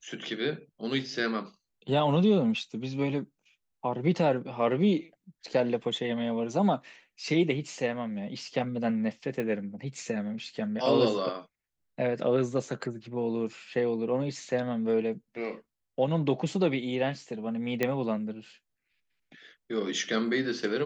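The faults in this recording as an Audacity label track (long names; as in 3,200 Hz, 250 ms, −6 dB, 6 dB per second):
9.400000	9.400000	click −20 dBFS
17.830000	17.830000	click −13 dBFS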